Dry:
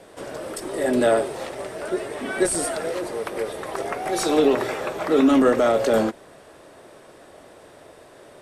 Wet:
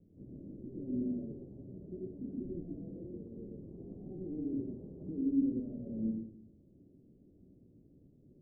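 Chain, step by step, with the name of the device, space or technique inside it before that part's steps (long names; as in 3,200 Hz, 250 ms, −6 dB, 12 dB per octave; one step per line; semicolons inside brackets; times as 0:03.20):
club heard from the street (brickwall limiter −17 dBFS, peak gain reduction 9 dB; low-pass filter 240 Hz 24 dB per octave; convolution reverb RT60 0.55 s, pre-delay 76 ms, DRR 1 dB)
level −5 dB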